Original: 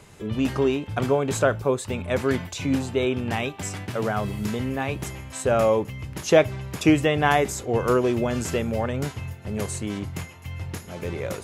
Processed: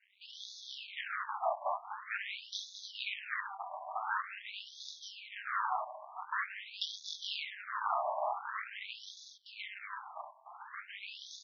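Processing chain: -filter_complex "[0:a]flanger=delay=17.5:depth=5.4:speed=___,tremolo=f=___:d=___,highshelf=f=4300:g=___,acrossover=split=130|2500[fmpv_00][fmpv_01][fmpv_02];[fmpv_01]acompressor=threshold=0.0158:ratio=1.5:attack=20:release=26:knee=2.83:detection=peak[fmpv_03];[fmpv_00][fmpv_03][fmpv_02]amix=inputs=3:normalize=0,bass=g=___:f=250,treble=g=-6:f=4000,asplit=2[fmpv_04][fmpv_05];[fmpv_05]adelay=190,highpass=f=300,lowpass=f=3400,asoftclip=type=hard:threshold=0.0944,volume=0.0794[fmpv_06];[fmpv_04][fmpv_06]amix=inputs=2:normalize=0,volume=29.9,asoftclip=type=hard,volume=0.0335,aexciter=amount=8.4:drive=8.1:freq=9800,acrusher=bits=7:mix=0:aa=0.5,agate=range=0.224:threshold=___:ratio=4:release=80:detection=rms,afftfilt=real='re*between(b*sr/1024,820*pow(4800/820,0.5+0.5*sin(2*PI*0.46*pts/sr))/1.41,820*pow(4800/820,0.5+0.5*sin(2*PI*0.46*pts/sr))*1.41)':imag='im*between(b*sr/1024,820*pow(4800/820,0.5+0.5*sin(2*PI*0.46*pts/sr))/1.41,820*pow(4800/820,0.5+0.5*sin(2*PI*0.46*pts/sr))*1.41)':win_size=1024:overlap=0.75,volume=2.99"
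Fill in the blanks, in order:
1.8, 200, 0.919, -2, 6, 0.00891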